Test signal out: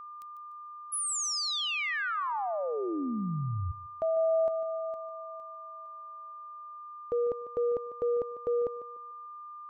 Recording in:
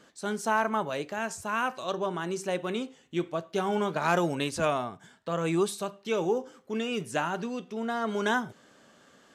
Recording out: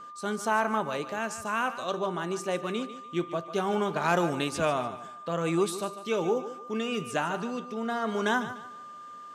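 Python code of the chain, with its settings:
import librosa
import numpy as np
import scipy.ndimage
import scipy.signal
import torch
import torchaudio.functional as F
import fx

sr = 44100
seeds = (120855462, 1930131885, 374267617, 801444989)

y = fx.echo_thinned(x, sr, ms=148, feedback_pct=33, hz=170.0, wet_db=-12.5)
y = y + 10.0 ** (-42.0 / 20.0) * np.sin(2.0 * np.pi * 1200.0 * np.arange(len(y)) / sr)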